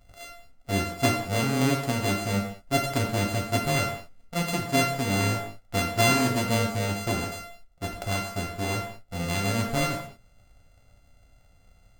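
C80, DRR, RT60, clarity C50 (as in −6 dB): 8.5 dB, 1.0 dB, non-exponential decay, 5.5 dB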